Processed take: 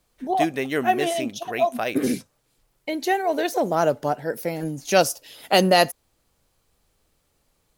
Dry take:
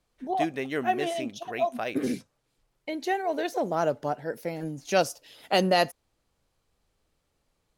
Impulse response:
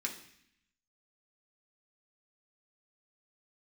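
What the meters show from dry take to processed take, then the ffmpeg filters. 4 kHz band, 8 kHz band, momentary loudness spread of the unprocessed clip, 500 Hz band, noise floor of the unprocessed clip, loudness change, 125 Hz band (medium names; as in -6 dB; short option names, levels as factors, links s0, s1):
+6.5 dB, +9.5 dB, 10 LU, +5.5 dB, -76 dBFS, +5.5 dB, +5.5 dB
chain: -af "highshelf=f=9400:g=11,volume=1.88"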